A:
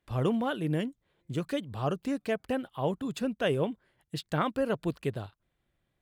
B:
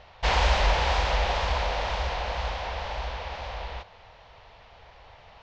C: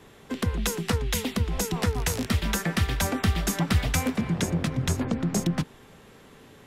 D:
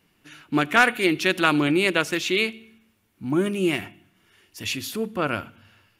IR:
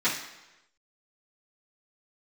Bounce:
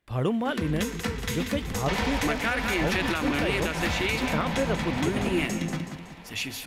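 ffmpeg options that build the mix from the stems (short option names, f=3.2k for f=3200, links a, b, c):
-filter_complex "[0:a]volume=2dB[a];[1:a]acompressor=threshold=-28dB:ratio=6,adelay=1650,volume=-1.5dB,asplit=2[b][c];[c]volume=-14dB[d];[2:a]equalizer=f=11k:t=o:w=0.77:g=-2,adelay=150,volume=-8dB,asplit=3[e][f][g];[f]volume=-12dB[h];[g]volume=-5dB[i];[3:a]adelay=1700,volume=-4.5dB,asplit=2[j][k];[k]volume=-13dB[l];[4:a]atrim=start_sample=2205[m];[d][h]amix=inputs=2:normalize=0[n];[n][m]afir=irnorm=-1:irlink=0[o];[i][l]amix=inputs=2:normalize=0,aecho=0:1:187|374|561|748|935|1122:1|0.45|0.202|0.0911|0.041|0.0185[p];[a][b][e][j][o][p]amix=inputs=6:normalize=0,equalizer=f=2.1k:t=o:w=0.7:g=3.5,alimiter=limit=-15.5dB:level=0:latency=1:release=148"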